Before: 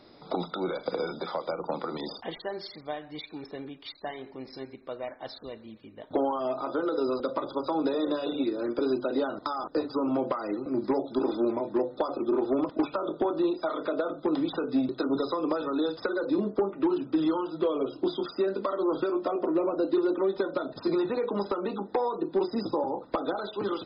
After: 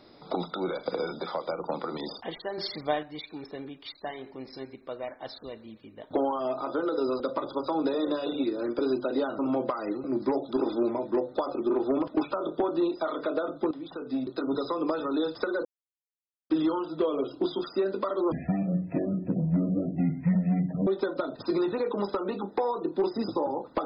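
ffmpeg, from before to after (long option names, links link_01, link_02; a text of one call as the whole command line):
ffmpeg -i in.wav -filter_complex "[0:a]asplit=9[link_01][link_02][link_03][link_04][link_05][link_06][link_07][link_08][link_09];[link_01]atrim=end=2.582[link_10];[link_02]atrim=start=2.578:end=3.032,asetpts=PTS-STARTPTS,volume=7.5dB[link_11];[link_03]atrim=start=3.028:end=9.392[link_12];[link_04]atrim=start=10.008:end=14.33,asetpts=PTS-STARTPTS,afade=type=out:start_time=4.318:duration=0.004:curve=hsin:silence=0.177828[link_13];[link_05]atrim=start=14.33:end=16.27,asetpts=PTS-STARTPTS,afade=type=in:duration=1.34:curve=qsin:silence=0.177828,afade=type=out:start_time=1.936:duration=0.004:curve=hsin[link_14];[link_06]atrim=start=16.27:end=17.12,asetpts=PTS-STARTPTS,volume=0[link_15];[link_07]atrim=start=17.12:end=18.944,asetpts=PTS-STARTPTS,afade=type=in:duration=0.004:curve=hsin[link_16];[link_08]atrim=start=18.94:end=20.24,asetpts=PTS-STARTPTS,asetrate=22491,aresample=44100[link_17];[link_09]atrim=start=20.236[link_18];[link_10][link_11]acrossfade=duration=0.004:curve1=hsin:curve2=hsin[link_19];[link_19][link_12]acrossfade=duration=0.004:curve1=hsin:curve2=hsin[link_20];[link_13][link_14][link_15][link_16]concat=n=4:v=0:a=1[link_21];[link_20][link_21]acrossfade=duration=0.004:curve1=hsin:curve2=hsin[link_22];[link_22][link_17]acrossfade=duration=0.004:curve1=hsin:curve2=hsin[link_23];[link_23][link_18]acrossfade=duration=0.004:curve1=hsin:curve2=hsin" out.wav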